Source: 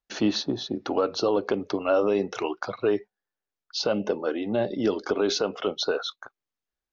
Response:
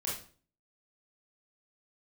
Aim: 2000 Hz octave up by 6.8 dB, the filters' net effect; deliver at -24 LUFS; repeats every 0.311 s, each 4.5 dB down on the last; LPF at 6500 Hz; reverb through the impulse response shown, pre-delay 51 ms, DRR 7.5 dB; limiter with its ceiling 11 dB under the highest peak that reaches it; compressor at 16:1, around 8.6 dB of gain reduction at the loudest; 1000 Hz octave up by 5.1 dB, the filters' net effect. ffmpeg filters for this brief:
-filter_complex "[0:a]lowpass=6.5k,equalizer=f=1k:t=o:g=4,equalizer=f=2k:t=o:g=8.5,acompressor=threshold=-25dB:ratio=16,alimiter=limit=-22dB:level=0:latency=1,aecho=1:1:311|622|933|1244|1555|1866|2177|2488|2799:0.596|0.357|0.214|0.129|0.0772|0.0463|0.0278|0.0167|0.01,asplit=2[a][b];[1:a]atrim=start_sample=2205,adelay=51[c];[b][c]afir=irnorm=-1:irlink=0,volume=-10.5dB[d];[a][d]amix=inputs=2:normalize=0,volume=7dB"

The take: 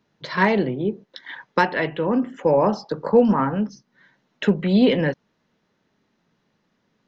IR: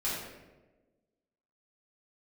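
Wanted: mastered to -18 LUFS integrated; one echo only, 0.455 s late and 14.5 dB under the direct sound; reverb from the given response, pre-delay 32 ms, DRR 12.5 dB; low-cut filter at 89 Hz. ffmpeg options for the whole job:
-filter_complex "[0:a]highpass=89,aecho=1:1:455:0.188,asplit=2[a][b];[1:a]atrim=start_sample=2205,adelay=32[c];[b][c]afir=irnorm=-1:irlink=0,volume=-19dB[d];[a][d]amix=inputs=2:normalize=0,volume=3dB"

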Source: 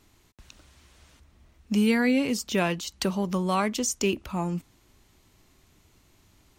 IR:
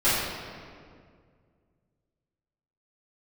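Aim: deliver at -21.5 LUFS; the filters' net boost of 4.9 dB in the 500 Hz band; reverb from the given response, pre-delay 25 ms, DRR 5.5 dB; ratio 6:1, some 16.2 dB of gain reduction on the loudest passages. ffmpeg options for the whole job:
-filter_complex "[0:a]equalizer=f=500:t=o:g=6,acompressor=threshold=-35dB:ratio=6,asplit=2[a][b];[1:a]atrim=start_sample=2205,adelay=25[c];[b][c]afir=irnorm=-1:irlink=0,volume=-22dB[d];[a][d]amix=inputs=2:normalize=0,volume=15.5dB"

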